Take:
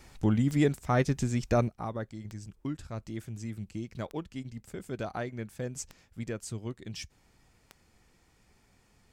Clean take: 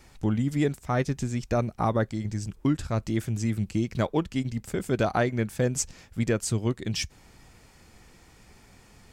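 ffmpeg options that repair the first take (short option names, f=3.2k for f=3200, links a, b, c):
-af "adeclick=t=4,asetnsamples=n=441:p=0,asendcmd='1.68 volume volume 11dB',volume=0dB"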